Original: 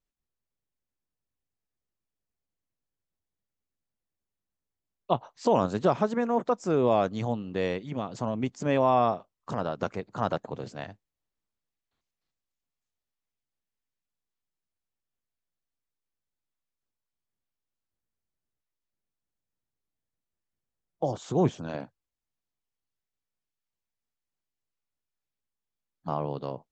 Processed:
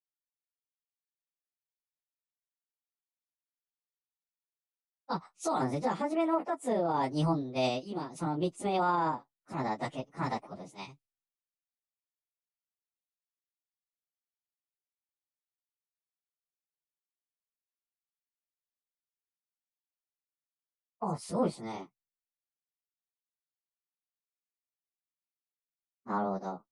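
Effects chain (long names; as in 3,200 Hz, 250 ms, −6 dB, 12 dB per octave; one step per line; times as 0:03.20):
phase-vocoder pitch shift without resampling +5.5 semitones
parametric band 1,600 Hz −15 dB 0.21 octaves
brickwall limiter −24.5 dBFS, peak gain reduction 10.5 dB
multiband upward and downward expander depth 100%
level +2.5 dB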